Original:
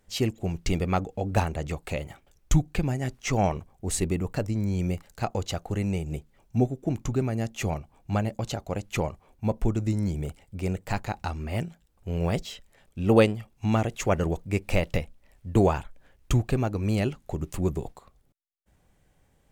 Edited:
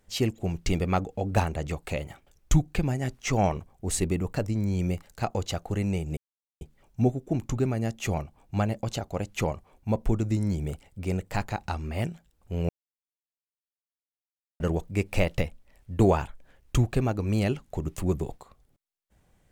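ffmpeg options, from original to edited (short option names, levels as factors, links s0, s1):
-filter_complex "[0:a]asplit=4[s0][s1][s2][s3];[s0]atrim=end=6.17,asetpts=PTS-STARTPTS,afade=t=out:st=6.166:d=0.004:c=hsin,apad=pad_dur=0.44[s4];[s1]atrim=start=6.17:end=12.25,asetpts=PTS-STARTPTS,afade=t=in:d=0.004:c=hsin,afade=t=out:st=6.076:d=0.004:c=hsin[s5];[s2]atrim=start=12.25:end=14.16,asetpts=PTS-STARTPTS,volume=0[s6];[s3]atrim=start=14.16,asetpts=PTS-STARTPTS,afade=t=in:d=0.004:c=hsin[s7];[s4][s5][s6][s7]concat=n=4:v=0:a=1"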